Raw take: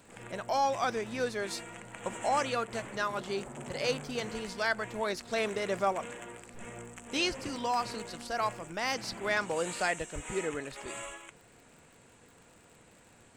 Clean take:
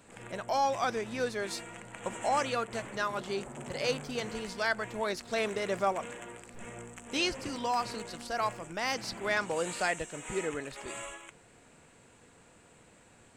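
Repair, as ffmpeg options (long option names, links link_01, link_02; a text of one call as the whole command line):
ffmpeg -i in.wav -filter_complex "[0:a]adeclick=threshold=4,asplit=3[link_01][link_02][link_03];[link_01]afade=type=out:start_time=10.14:duration=0.02[link_04];[link_02]highpass=frequency=140:width=0.5412,highpass=frequency=140:width=1.3066,afade=type=in:start_time=10.14:duration=0.02,afade=type=out:start_time=10.26:duration=0.02[link_05];[link_03]afade=type=in:start_time=10.26:duration=0.02[link_06];[link_04][link_05][link_06]amix=inputs=3:normalize=0" out.wav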